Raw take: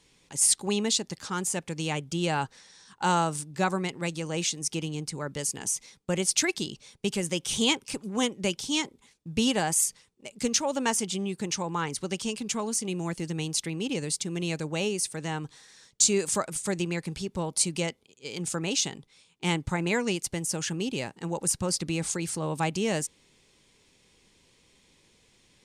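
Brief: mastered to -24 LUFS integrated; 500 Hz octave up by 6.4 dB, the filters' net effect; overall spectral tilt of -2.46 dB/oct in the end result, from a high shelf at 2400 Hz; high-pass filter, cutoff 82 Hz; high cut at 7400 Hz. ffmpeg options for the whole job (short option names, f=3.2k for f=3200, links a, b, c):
-af "highpass=82,lowpass=7.4k,equalizer=f=500:t=o:g=7.5,highshelf=f=2.4k:g=8,volume=0.5dB"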